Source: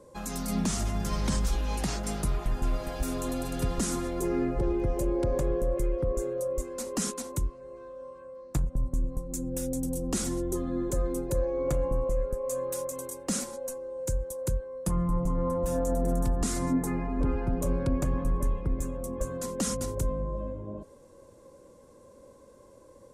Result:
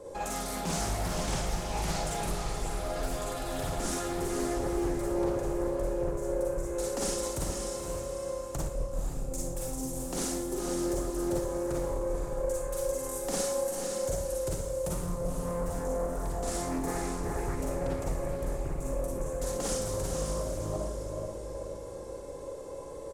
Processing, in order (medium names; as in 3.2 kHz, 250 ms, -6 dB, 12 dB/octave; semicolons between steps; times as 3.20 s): peaking EQ 670 Hz +11.5 dB 0.31 oct; hum notches 50/100/150/200/250/300/350 Hz; comb 2.3 ms, depth 49%; compression 2.5:1, threshold -40 dBFS, peak gain reduction 13.5 dB; saturation -30.5 dBFS, distortion -21 dB; echo that smears into a reverb 498 ms, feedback 43%, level -4 dB; Schroeder reverb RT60 0.52 s, DRR -3.5 dB; loudspeaker Doppler distortion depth 0.43 ms; trim +3.5 dB